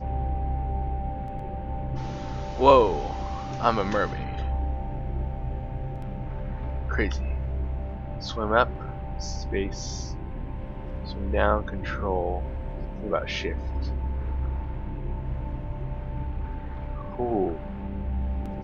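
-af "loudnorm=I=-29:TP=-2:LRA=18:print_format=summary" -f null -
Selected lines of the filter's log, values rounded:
Input Integrated:    -29.3 LUFS
Input True Peak:      -3.6 dBTP
Input LRA:             7.0 LU
Input Threshold:     -39.3 LUFS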